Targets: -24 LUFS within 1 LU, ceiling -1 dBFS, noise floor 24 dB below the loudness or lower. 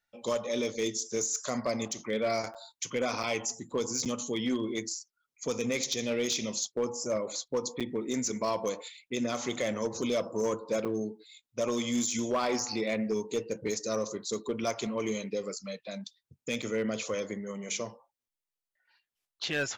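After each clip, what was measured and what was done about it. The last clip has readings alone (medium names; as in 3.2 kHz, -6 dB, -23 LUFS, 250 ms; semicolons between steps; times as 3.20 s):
clipped samples 0.6%; clipping level -23.0 dBFS; dropouts 6; longest dropout 6.8 ms; loudness -32.5 LUFS; peak level -23.0 dBFS; loudness target -24.0 LUFS
-> clip repair -23 dBFS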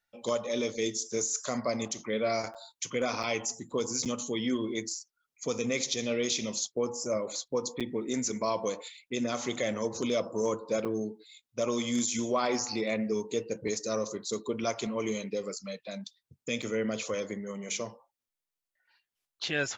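clipped samples 0.0%; dropouts 6; longest dropout 6.8 ms
-> interpolate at 2.54/3.23/4.05/7.80/10.85/16.62 s, 6.8 ms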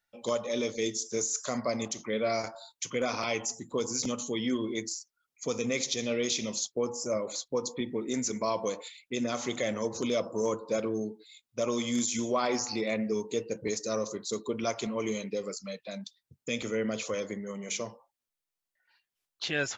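dropouts 0; loudness -32.5 LUFS; peak level -16.0 dBFS; loudness target -24.0 LUFS
-> trim +8.5 dB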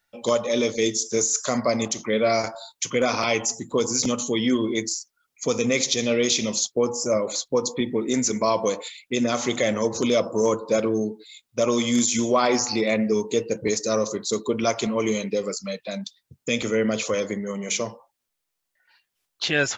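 loudness -24.0 LUFS; peak level -7.5 dBFS; noise floor -80 dBFS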